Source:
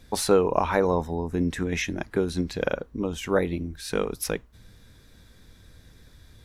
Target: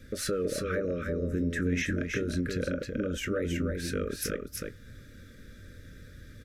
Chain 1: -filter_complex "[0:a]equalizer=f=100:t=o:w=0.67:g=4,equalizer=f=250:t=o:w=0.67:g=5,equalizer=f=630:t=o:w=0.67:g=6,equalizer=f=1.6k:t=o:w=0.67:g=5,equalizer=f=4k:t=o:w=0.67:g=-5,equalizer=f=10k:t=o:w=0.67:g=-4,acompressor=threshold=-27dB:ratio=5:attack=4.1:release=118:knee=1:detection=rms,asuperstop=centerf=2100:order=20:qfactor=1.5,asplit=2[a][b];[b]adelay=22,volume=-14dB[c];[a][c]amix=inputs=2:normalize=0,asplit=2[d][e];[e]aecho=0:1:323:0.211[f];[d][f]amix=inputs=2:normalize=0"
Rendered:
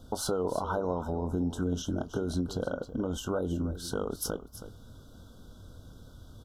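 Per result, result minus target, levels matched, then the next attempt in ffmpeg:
2000 Hz band -9.5 dB; echo-to-direct -9 dB
-filter_complex "[0:a]equalizer=f=100:t=o:w=0.67:g=4,equalizer=f=250:t=o:w=0.67:g=5,equalizer=f=630:t=o:w=0.67:g=6,equalizer=f=1.6k:t=o:w=0.67:g=5,equalizer=f=4k:t=o:w=0.67:g=-5,equalizer=f=10k:t=o:w=0.67:g=-4,acompressor=threshold=-27dB:ratio=5:attack=4.1:release=118:knee=1:detection=rms,asuperstop=centerf=850:order=20:qfactor=1.5,asplit=2[a][b];[b]adelay=22,volume=-14dB[c];[a][c]amix=inputs=2:normalize=0,asplit=2[d][e];[e]aecho=0:1:323:0.211[f];[d][f]amix=inputs=2:normalize=0"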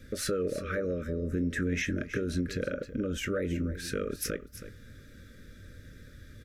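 echo-to-direct -9 dB
-filter_complex "[0:a]equalizer=f=100:t=o:w=0.67:g=4,equalizer=f=250:t=o:w=0.67:g=5,equalizer=f=630:t=o:w=0.67:g=6,equalizer=f=1.6k:t=o:w=0.67:g=5,equalizer=f=4k:t=o:w=0.67:g=-5,equalizer=f=10k:t=o:w=0.67:g=-4,acompressor=threshold=-27dB:ratio=5:attack=4.1:release=118:knee=1:detection=rms,asuperstop=centerf=850:order=20:qfactor=1.5,asplit=2[a][b];[b]adelay=22,volume=-14dB[c];[a][c]amix=inputs=2:normalize=0,asplit=2[d][e];[e]aecho=0:1:323:0.596[f];[d][f]amix=inputs=2:normalize=0"

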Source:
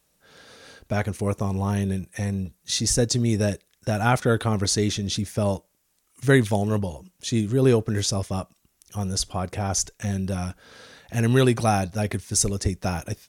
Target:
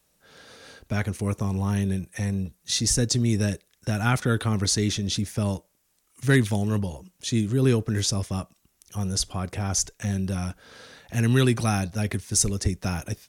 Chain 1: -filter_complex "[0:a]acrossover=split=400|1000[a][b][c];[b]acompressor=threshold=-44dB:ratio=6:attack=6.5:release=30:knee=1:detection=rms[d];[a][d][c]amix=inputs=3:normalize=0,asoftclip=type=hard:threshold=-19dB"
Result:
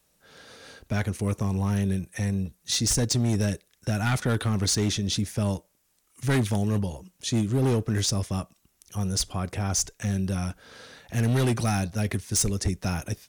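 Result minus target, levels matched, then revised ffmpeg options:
hard clip: distortion +23 dB
-filter_complex "[0:a]acrossover=split=400|1000[a][b][c];[b]acompressor=threshold=-44dB:ratio=6:attack=6.5:release=30:knee=1:detection=rms[d];[a][d][c]amix=inputs=3:normalize=0,asoftclip=type=hard:threshold=-8.5dB"

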